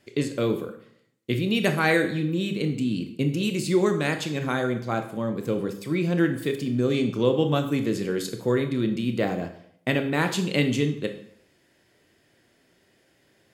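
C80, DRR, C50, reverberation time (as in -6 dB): 13.0 dB, 6.0 dB, 10.0 dB, 0.65 s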